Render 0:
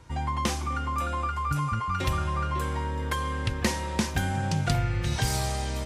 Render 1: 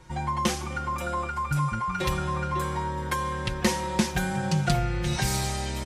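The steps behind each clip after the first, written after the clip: comb 5.5 ms, depth 77%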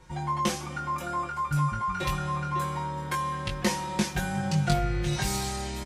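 doubler 20 ms -4 dB; gain -3.5 dB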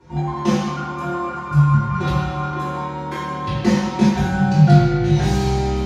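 reverb RT60 1.1 s, pre-delay 3 ms, DRR -9.5 dB; gain -11 dB

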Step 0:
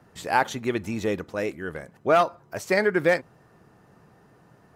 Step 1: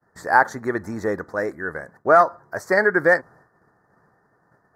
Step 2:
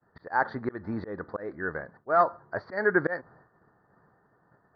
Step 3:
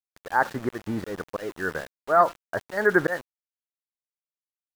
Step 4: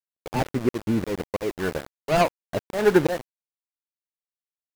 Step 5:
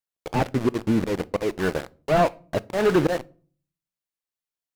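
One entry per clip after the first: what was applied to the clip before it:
expander -48 dBFS; EQ curve 200 Hz 0 dB, 1800 Hz +10 dB, 2800 Hz -28 dB, 4500 Hz -2 dB; gain -1 dB
auto swell 0.213 s; rippled Chebyshev low-pass 4700 Hz, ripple 3 dB; tilt shelf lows +3 dB, about 660 Hz; gain -1.5 dB
sample gate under -40 dBFS; gain +3.5 dB
median filter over 41 samples; gain +6.5 dB
overloaded stage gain 16 dB; on a send at -19 dB: reverb RT60 0.45 s, pre-delay 6 ms; on the sum: slew limiter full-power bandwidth 140 Hz; gain +2.5 dB

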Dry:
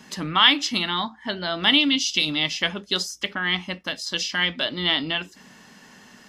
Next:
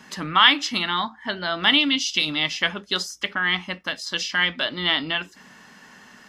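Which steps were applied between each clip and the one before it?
bell 1400 Hz +6 dB 1.6 oct; gain -2 dB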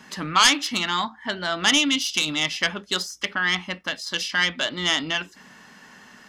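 self-modulated delay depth 0.099 ms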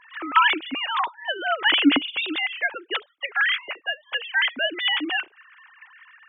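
sine-wave speech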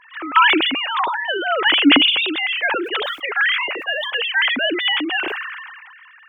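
sustainer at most 32 dB/s; gain +3 dB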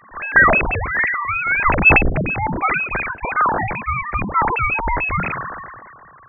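inverted band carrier 2900 Hz; gain +1.5 dB

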